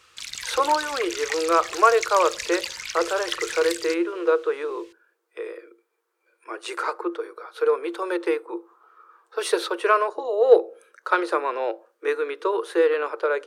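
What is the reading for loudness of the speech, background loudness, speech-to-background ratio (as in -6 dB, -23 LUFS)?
-23.5 LUFS, -31.0 LUFS, 7.5 dB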